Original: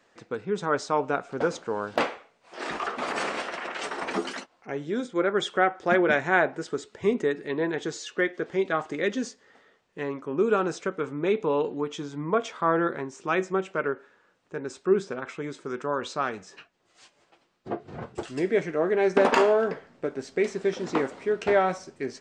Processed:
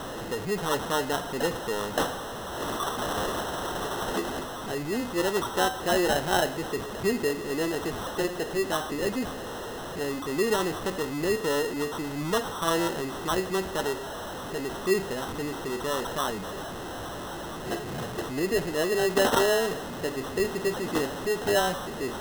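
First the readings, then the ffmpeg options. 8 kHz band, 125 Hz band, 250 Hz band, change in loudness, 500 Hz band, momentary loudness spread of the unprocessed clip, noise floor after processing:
+9.0 dB, +2.0 dB, -0.5 dB, -1.5 dB, -2.0 dB, 13 LU, -36 dBFS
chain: -af "aeval=exprs='val(0)+0.5*0.0473*sgn(val(0))':c=same,acrusher=samples=19:mix=1:aa=0.000001,volume=-4dB"

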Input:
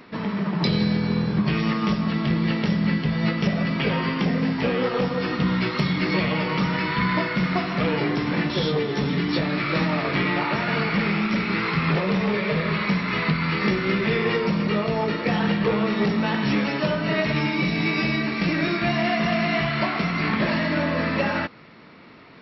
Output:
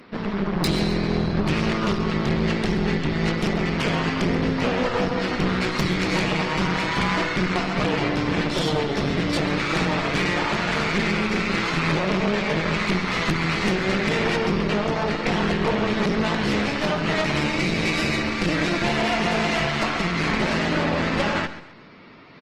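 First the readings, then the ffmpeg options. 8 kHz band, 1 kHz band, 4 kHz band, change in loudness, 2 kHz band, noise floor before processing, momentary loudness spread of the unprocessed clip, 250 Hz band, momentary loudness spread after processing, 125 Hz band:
n/a, +1.5 dB, +2.5 dB, +0.5 dB, +1.0 dB, -30 dBFS, 2 LU, -1.0 dB, 2 LU, -1.0 dB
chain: -af "aeval=exprs='0.355*(cos(1*acos(clip(val(0)/0.355,-1,1)))-cos(1*PI/2))+0.1*(cos(3*acos(clip(val(0)/0.355,-1,1)))-cos(3*PI/2))+0.0631*(cos(5*acos(clip(val(0)/0.355,-1,1)))-cos(5*PI/2))+0.0794*(cos(6*acos(clip(val(0)/0.355,-1,1)))-cos(6*PI/2))+0.00501*(cos(8*acos(clip(val(0)/0.355,-1,1)))-cos(8*PI/2))':c=same,aecho=1:1:133|266|399:0.2|0.0658|0.0217" -ar 48000 -c:a libopus -b:a 20k

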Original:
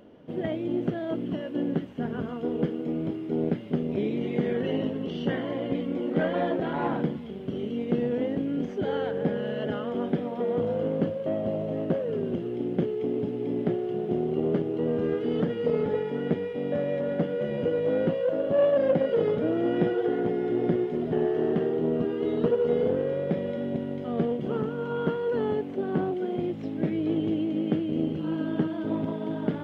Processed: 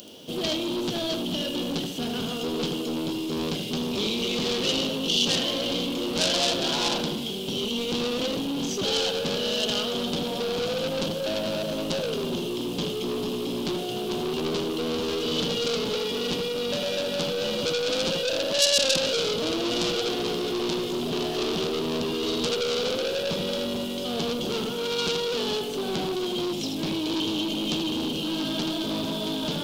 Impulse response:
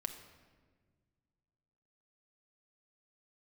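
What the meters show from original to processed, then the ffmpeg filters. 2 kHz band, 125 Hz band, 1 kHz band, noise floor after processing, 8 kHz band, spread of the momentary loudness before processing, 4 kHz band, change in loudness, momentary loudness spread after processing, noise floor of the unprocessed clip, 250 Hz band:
+7.0 dB, -3.5 dB, +2.5 dB, -31 dBFS, n/a, 6 LU, +22.5 dB, +1.5 dB, 6 LU, -35 dBFS, -1.5 dB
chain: -filter_complex "[0:a]lowshelf=f=200:g=-6,bandreject=f=143.3:t=h:w=4,bandreject=f=286.6:t=h:w=4,bandreject=f=429.9:t=h:w=4,bandreject=f=573.2:t=h:w=4,bandreject=f=716.5:t=h:w=4,bandreject=f=859.8:t=h:w=4,bandreject=f=1.0031k:t=h:w=4,bandreject=f=1.1464k:t=h:w=4,bandreject=f=1.2897k:t=h:w=4,bandreject=f=1.433k:t=h:w=4,bandreject=f=1.5763k:t=h:w=4,bandreject=f=1.7196k:t=h:w=4,bandreject=f=1.8629k:t=h:w=4,bandreject=f=2.0062k:t=h:w=4,bandreject=f=2.1495k:t=h:w=4,bandreject=f=2.2928k:t=h:w=4,bandreject=f=2.4361k:t=h:w=4,bandreject=f=2.5794k:t=h:w=4,bandreject=f=2.7227k:t=h:w=4,bandreject=f=2.866k:t=h:w=4,bandreject=f=3.0093k:t=h:w=4,bandreject=f=3.1526k:t=h:w=4,bandreject=f=3.2959k:t=h:w=4,bandreject=f=3.4392k:t=h:w=4,bandreject=f=3.5825k:t=h:w=4,bandreject=f=3.7258k:t=h:w=4,bandreject=f=3.8691k:t=h:w=4,bandreject=f=4.0124k:t=h:w=4,bandreject=f=4.1557k:t=h:w=4,bandreject=f=4.299k:t=h:w=4,asplit=2[a][b];[1:a]atrim=start_sample=2205,adelay=79[c];[b][c]afir=irnorm=-1:irlink=0,volume=-6.5dB[d];[a][d]amix=inputs=2:normalize=0,aeval=exprs='(tanh(35.5*val(0)+0.1)-tanh(0.1))/35.5':c=same,aexciter=amount=16:drive=6:freq=3k,volume=5.5dB"

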